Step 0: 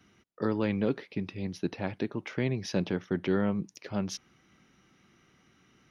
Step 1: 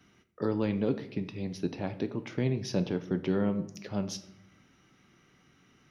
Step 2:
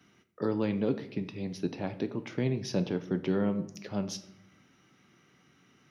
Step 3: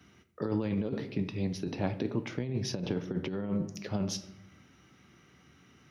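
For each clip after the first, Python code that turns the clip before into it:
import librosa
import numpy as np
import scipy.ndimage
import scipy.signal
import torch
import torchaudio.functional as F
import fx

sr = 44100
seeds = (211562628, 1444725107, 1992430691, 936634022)

y1 = fx.room_shoebox(x, sr, seeds[0], volume_m3=140.0, walls='mixed', distance_m=0.31)
y1 = fx.dynamic_eq(y1, sr, hz=1800.0, q=0.83, threshold_db=-48.0, ratio=4.0, max_db=-6)
y2 = scipy.signal.sosfilt(scipy.signal.butter(2, 98.0, 'highpass', fs=sr, output='sos'), y1)
y3 = fx.peak_eq(y2, sr, hz=67.0, db=14.0, octaves=0.88)
y3 = fx.over_compress(y3, sr, threshold_db=-30.0, ratio=-0.5)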